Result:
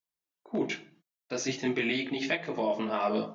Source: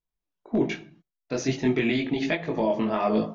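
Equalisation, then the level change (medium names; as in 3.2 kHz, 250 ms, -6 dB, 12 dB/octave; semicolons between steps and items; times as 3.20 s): high-pass 150 Hz 6 dB/octave; tilt EQ +1.5 dB/octave; -3.0 dB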